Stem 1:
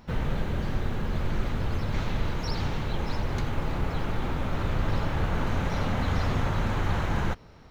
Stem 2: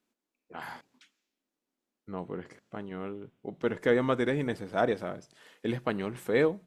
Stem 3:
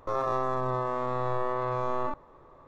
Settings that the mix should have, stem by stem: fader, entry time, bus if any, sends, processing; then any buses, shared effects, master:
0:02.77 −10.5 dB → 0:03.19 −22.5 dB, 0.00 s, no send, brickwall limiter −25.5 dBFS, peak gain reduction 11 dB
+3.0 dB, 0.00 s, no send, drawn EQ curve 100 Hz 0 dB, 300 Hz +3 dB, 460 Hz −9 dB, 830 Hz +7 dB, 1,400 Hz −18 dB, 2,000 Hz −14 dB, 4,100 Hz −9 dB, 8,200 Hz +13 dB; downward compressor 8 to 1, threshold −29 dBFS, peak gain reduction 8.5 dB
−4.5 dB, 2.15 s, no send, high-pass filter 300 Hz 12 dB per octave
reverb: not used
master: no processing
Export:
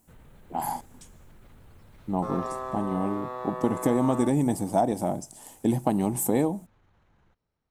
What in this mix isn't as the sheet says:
stem 1 −10.5 dB → −19.0 dB
stem 2 +3.0 dB → +10.0 dB

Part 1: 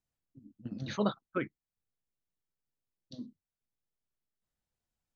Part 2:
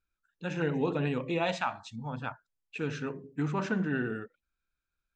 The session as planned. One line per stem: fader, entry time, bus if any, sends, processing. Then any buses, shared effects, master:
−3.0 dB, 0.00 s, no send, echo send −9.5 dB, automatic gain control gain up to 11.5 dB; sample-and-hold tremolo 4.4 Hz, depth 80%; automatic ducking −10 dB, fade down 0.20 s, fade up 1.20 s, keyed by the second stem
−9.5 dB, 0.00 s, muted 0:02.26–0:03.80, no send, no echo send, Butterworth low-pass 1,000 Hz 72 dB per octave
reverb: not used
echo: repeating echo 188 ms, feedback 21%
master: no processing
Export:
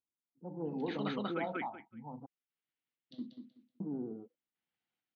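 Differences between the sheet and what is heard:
stem 2 −9.5 dB → −2.5 dB
master: extra loudspeaker in its box 260–3,800 Hz, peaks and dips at 420 Hz −6 dB, 590 Hz −9 dB, 1,000 Hz −5 dB, 2,100 Hz +4 dB, 3,000 Hz +4 dB

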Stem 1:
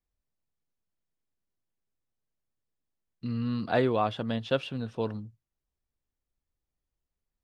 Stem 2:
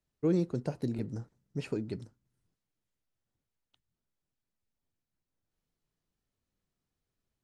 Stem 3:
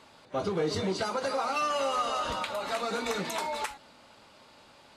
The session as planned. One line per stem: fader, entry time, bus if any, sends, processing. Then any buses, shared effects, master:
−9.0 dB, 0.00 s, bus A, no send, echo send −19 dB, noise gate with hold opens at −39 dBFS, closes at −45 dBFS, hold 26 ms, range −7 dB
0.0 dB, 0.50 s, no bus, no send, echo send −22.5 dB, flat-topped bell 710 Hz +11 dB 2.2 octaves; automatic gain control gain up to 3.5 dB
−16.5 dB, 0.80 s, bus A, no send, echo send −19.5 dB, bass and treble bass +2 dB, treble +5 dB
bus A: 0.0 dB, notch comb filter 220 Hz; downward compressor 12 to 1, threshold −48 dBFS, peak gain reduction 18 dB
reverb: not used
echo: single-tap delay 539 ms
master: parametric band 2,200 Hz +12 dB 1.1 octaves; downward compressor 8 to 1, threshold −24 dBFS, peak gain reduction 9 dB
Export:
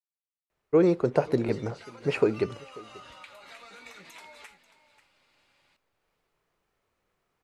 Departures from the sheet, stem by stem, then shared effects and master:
stem 1: muted
master: missing downward compressor 8 to 1, threshold −24 dBFS, peak gain reduction 9 dB

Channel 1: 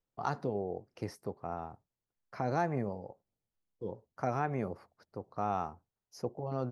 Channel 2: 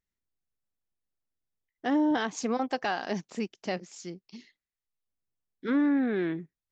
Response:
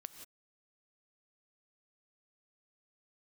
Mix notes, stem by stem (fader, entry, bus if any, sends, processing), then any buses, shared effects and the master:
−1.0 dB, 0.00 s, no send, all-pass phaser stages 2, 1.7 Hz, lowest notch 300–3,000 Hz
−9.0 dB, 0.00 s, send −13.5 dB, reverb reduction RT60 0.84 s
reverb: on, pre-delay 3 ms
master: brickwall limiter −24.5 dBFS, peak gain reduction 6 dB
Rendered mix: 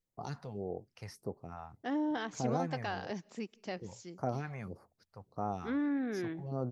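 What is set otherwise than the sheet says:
stem 2: missing reverb reduction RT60 0.84 s
master: missing brickwall limiter −24.5 dBFS, peak gain reduction 6 dB

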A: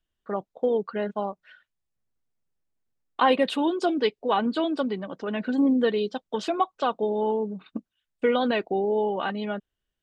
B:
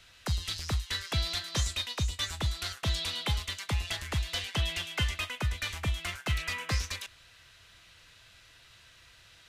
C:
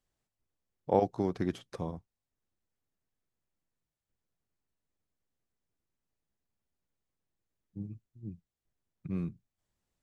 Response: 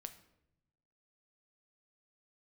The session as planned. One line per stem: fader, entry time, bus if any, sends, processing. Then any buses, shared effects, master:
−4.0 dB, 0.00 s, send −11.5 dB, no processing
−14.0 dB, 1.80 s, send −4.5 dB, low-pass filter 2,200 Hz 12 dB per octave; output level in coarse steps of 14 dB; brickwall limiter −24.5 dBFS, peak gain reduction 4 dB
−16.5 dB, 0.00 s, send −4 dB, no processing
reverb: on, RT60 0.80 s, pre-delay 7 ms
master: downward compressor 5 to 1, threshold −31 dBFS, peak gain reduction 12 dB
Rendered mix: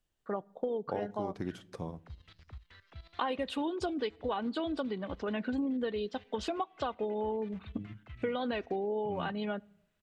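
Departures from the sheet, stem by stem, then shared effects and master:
stem B: send off
stem C −16.5 dB → −5.0 dB

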